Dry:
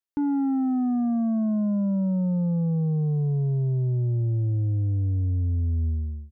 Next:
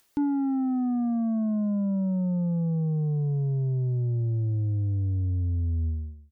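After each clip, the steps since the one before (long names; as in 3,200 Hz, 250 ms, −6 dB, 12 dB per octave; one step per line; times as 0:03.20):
upward compression, threshold −45 dBFS
reverb reduction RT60 0.62 s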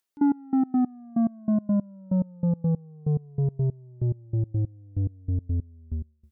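low-shelf EQ 130 Hz −8 dB
gate pattern "..x..x.x." 142 BPM −24 dB
level +7 dB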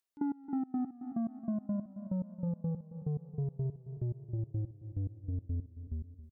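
repeating echo 271 ms, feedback 51%, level −14.5 dB
downward compressor 4 to 1, threshold −24 dBFS, peak gain reduction 5.5 dB
level −7.5 dB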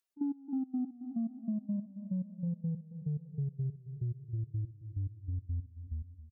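expanding power law on the bin magnitudes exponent 1.7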